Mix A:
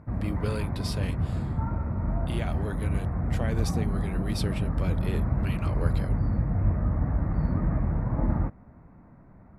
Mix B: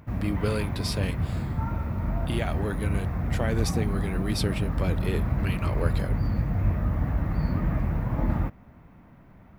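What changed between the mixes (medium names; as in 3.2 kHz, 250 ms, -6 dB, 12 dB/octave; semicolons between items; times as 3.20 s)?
speech +4.5 dB; background: remove boxcar filter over 14 samples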